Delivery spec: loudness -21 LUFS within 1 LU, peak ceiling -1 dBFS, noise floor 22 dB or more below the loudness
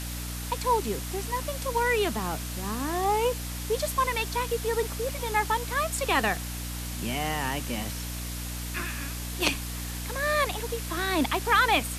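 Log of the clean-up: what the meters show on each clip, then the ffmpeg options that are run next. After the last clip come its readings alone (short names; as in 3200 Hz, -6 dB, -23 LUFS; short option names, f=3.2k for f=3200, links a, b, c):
hum 60 Hz; harmonics up to 300 Hz; hum level -33 dBFS; noise floor -35 dBFS; noise floor target -51 dBFS; loudness -28.5 LUFS; peak -10.5 dBFS; loudness target -21.0 LUFS
-> -af "bandreject=f=60:t=h:w=6,bandreject=f=120:t=h:w=6,bandreject=f=180:t=h:w=6,bandreject=f=240:t=h:w=6,bandreject=f=300:t=h:w=6"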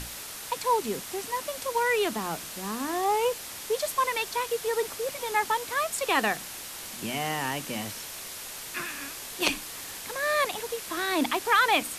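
hum none; noise floor -40 dBFS; noise floor target -51 dBFS
-> -af "afftdn=nr=11:nf=-40"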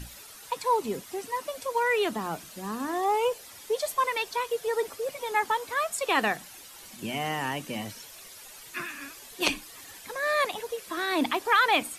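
noise floor -47 dBFS; noise floor target -51 dBFS
-> -af "afftdn=nr=6:nf=-47"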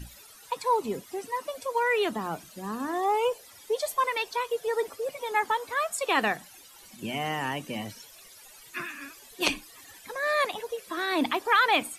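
noise floor -51 dBFS; loudness -28.5 LUFS; peak -10.5 dBFS; loudness target -21.0 LUFS
-> -af "volume=7.5dB"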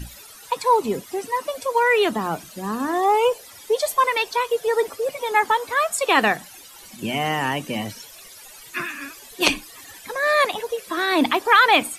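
loudness -21.0 LUFS; peak -3.0 dBFS; noise floor -44 dBFS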